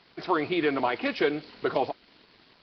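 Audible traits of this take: a quantiser's noise floor 8-bit, dither none; Nellymoser

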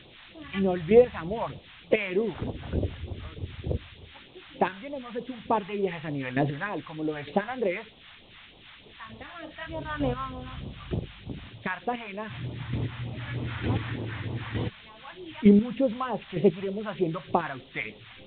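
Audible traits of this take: chopped level 1.1 Hz, depth 60%, duty 15%; a quantiser's noise floor 8-bit, dither triangular; phasing stages 2, 3.3 Hz, lowest notch 360–1600 Hz; µ-law

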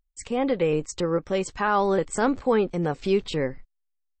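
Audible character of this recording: noise floor -76 dBFS; spectral tilt -5.0 dB/octave

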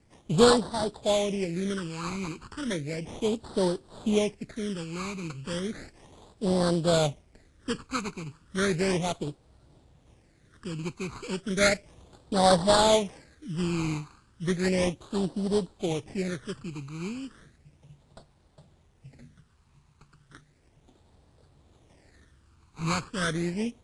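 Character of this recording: aliases and images of a low sample rate 2.8 kHz, jitter 20%; phasing stages 12, 0.34 Hz, lowest notch 570–2300 Hz; a quantiser's noise floor 12-bit, dither none; AAC

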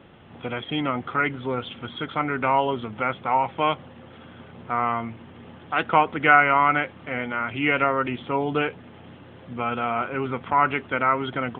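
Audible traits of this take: noise floor -46 dBFS; spectral tilt -3.0 dB/octave

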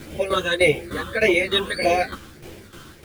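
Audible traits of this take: phasing stages 8, 1.7 Hz, lowest notch 640–1300 Hz; a quantiser's noise floor 8-bit, dither none; tremolo saw down 3.3 Hz, depth 75%; a shimmering, thickened sound

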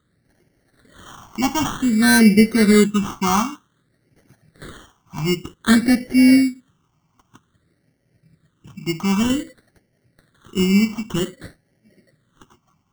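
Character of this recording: aliases and images of a low sample rate 2.5 kHz, jitter 0%; phasing stages 8, 0.53 Hz, lowest notch 510–1100 Hz

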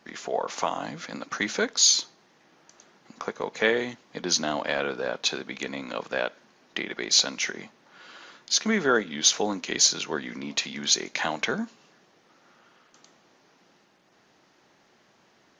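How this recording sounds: noise floor -62 dBFS; spectral tilt -1.0 dB/octave

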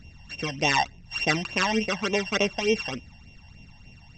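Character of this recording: a buzz of ramps at a fixed pitch in blocks of 16 samples; phasing stages 12, 3.4 Hz, lowest notch 390–1500 Hz; AAC

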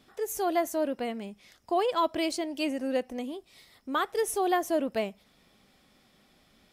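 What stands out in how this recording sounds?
noise floor -65 dBFS; spectral tilt -3.0 dB/octave

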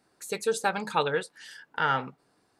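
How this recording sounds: noise floor -70 dBFS; spectral tilt -3.5 dB/octave

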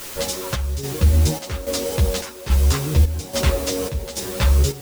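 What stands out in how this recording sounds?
a quantiser's noise floor 6-bit, dither triangular; chopped level 1.2 Hz, depth 65%, duty 65%; a shimmering, thickened sound

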